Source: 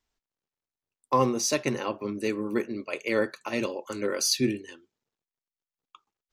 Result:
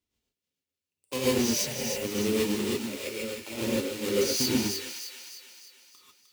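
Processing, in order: square wave that keeps the level; high-pass 54 Hz 12 dB/octave; high-order bell 1.1 kHz -10 dB; peak limiter -17 dBFS, peak gain reduction 7.5 dB; 1.52–1.97 s: static phaser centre 1.2 kHz, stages 6; 2.61–3.55 s: compression 10:1, threshold -30 dBFS, peak gain reduction 9.5 dB; tremolo triangle 8.9 Hz, depth 65%; short-mantissa float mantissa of 2-bit; on a send: feedback echo behind a high-pass 306 ms, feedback 51%, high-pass 1.5 kHz, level -5.5 dB; on the sum: gated-style reverb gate 170 ms rising, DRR -7 dB; trim -5 dB

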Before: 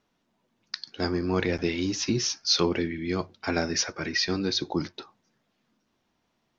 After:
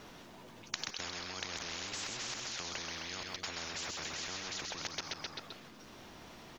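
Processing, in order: level held to a coarse grid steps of 20 dB; feedback delay 130 ms, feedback 43%, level -11 dB; spectrum-flattening compressor 10:1; trim +6 dB

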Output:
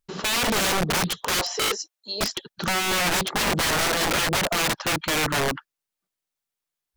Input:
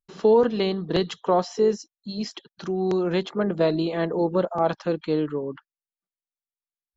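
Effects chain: 1.34–2.21 s: high-pass 420 Hz 24 dB/octave; peak limiter -16 dBFS, peak gain reduction 6.5 dB; integer overflow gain 26.5 dB; loudspeaker Doppler distortion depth 0.21 ms; trim +9 dB

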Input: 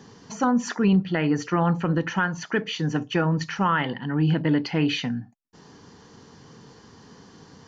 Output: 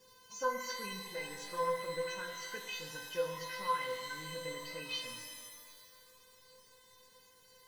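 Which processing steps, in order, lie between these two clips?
treble shelf 2.5 kHz +7.5 dB; gain riding within 5 dB 2 s; bit crusher 8-bit; feedback comb 510 Hz, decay 0.27 s, harmonics all, mix 100%; pitch-shifted reverb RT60 1.7 s, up +12 st, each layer -2 dB, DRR 5.5 dB

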